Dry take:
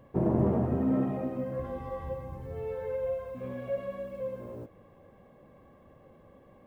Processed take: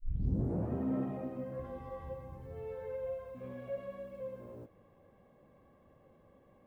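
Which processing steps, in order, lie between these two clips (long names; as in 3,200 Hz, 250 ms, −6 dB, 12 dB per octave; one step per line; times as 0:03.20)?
turntable start at the beginning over 0.71 s
level −7 dB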